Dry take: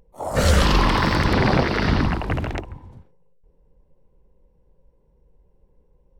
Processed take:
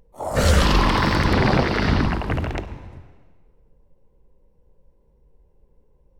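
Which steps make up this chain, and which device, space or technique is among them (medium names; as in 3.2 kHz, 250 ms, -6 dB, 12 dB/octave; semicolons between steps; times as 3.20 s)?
saturated reverb return (on a send at -9 dB: reverberation RT60 1.5 s, pre-delay 3 ms + saturation -23 dBFS, distortion -6 dB)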